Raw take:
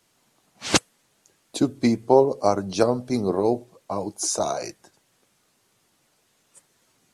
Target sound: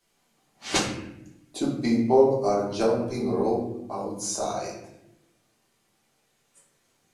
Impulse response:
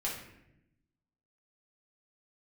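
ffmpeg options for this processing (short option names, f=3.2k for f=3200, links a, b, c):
-filter_complex "[1:a]atrim=start_sample=2205[a];[0:a][a]afir=irnorm=-1:irlink=0,volume=-6.5dB"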